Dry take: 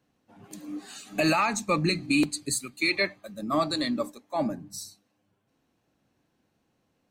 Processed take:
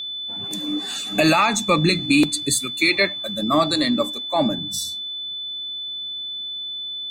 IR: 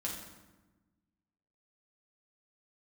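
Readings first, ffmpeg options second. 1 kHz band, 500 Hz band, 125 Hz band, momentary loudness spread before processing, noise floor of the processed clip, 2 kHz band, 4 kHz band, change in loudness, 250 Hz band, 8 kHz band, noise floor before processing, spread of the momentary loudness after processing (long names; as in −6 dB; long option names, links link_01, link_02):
+7.0 dB, +7.5 dB, +7.5 dB, 15 LU, −31 dBFS, +7.0 dB, +14.0 dB, +6.0 dB, +7.5 dB, +8.0 dB, −74 dBFS, 10 LU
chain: -filter_complex "[0:a]asplit=2[link_01][link_02];[link_02]acompressor=threshold=-35dB:ratio=6,volume=-1dB[link_03];[link_01][link_03]amix=inputs=2:normalize=0,aeval=exprs='val(0)+0.0224*sin(2*PI*3500*n/s)':channel_layout=same,volume=5.5dB"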